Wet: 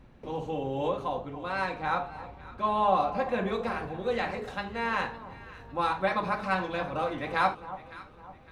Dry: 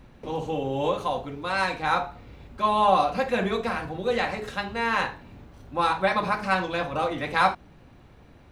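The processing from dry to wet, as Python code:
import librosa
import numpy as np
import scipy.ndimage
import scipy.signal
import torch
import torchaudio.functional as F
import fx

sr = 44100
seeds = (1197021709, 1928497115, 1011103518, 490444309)

y = fx.high_shelf(x, sr, hz=3600.0, db=fx.steps((0.0, -6.0), (0.87, -12.0), (3.47, -6.0)))
y = fx.echo_alternate(y, sr, ms=279, hz=1100.0, feedback_pct=61, wet_db=-12.5)
y = y * librosa.db_to_amplitude(-4.0)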